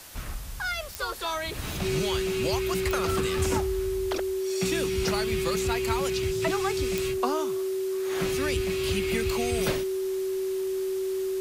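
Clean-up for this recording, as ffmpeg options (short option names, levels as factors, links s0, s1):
-af "adeclick=t=4,bandreject=f=380:w=30,afwtdn=0.0056"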